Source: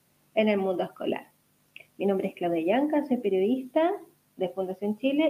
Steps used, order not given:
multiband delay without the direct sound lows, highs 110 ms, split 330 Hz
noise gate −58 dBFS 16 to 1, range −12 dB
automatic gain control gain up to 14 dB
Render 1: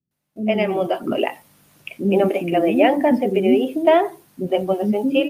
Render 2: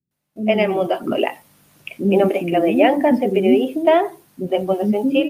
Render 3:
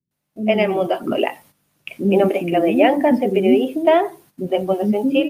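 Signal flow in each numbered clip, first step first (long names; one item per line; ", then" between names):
automatic gain control, then multiband delay without the direct sound, then noise gate
multiband delay without the direct sound, then automatic gain control, then noise gate
multiband delay without the direct sound, then noise gate, then automatic gain control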